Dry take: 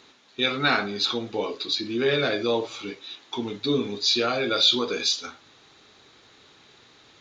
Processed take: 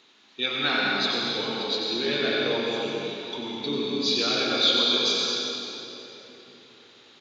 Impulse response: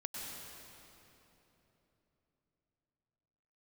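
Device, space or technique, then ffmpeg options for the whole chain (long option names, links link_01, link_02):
PA in a hall: -filter_complex "[0:a]highpass=150,equalizer=frequency=3100:width_type=o:width=0.87:gain=5.5,aecho=1:1:92:0.447[link_01];[1:a]atrim=start_sample=2205[link_02];[link_01][link_02]afir=irnorm=-1:irlink=0,volume=-2.5dB"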